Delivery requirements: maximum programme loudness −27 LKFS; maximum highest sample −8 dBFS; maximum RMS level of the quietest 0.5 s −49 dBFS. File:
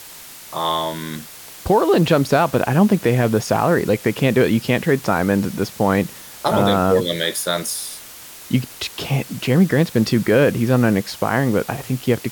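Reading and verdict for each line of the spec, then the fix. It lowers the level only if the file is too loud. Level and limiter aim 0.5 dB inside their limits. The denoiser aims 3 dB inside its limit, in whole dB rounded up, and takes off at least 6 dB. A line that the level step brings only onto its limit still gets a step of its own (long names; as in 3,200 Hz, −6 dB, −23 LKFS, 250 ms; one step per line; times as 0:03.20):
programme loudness −18.5 LKFS: out of spec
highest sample −5.0 dBFS: out of spec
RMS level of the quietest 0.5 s −39 dBFS: out of spec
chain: broadband denoise 6 dB, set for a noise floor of −39 dBFS
level −9 dB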